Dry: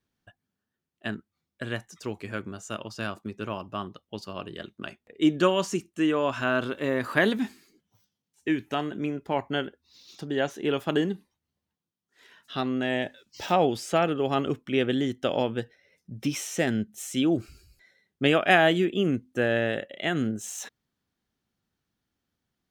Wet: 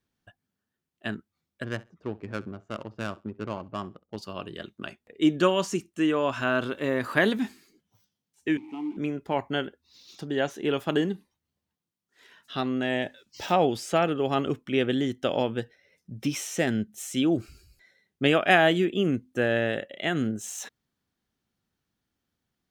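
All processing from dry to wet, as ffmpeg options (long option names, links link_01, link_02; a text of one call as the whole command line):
ffmpeg -i in.wav -filter_complex "[0:a]asettb=1/sr,asplit=3[link_01][link_02][link_03];[link_01]atrim=end=1.644[link_04];[link_02]atrim=start=1.64:end=4.17,asetpts=PTS-STARTPTS,afade=type=in:duration=0.004:curve=qsin,afade=type=out:start_time=2.526:duration=0.004:curve=qsin,adynamicsmooth=sensitivity=2.5:basefreq=780,aecho=1:1:66|132:0.0891|0.0152,atrim=end_sample=111573[link_05];[link_03]atrim=start=4.166[link_06];[link_04][link_05]acrossfade=duration=0.004:curve1=hsin:curve2=qsin[link_07];[link_07][link_06]acrossfade=duration=0.004:curve1=qsin:curve2=hsin,asettb=1/sr,asplit=3[link_08][link_09][link_10];[link_08]atrim=end=8.574[link_11];[link_09]atrim=start=8.57:end=8.97,asetpts=PTS-STARTPTS,afade=type=in:duration=0.004:curve=qsin,afade=type=out:start_time=0.396:duration=0.004:curve=qsin,aeval=exprs='val(0)+0.5*0.0211*sgn(val(0))':channel_layout=same,acrusher=bits=3:mode=log:mix=0:aa=0.000001,asplit=3[link_12][link_13][link_14];[link_12]bandpass=frequency=300:width_type=q:width=8,volume=0dB[link_15];[link_13]bandpass=frequency=870:width_type=q:width=8,volume=-6dB[link_16];[link_14]bandpass=frequency=2240:width_type=q:width=8,volume=-9dB[link_17];[link_15][link_16][link_17]amix=inputs=3:normalize=0[link_18];[link_10]atrim=start=8.966[link_19];[link_11][link_18]acrossfade=duration=0.004:curve1=hsin:curve2=qsin[link_20];[link_20][link_19]acrossfade=duration=0.004:curve1=qsin:curve2=hsin" out.wav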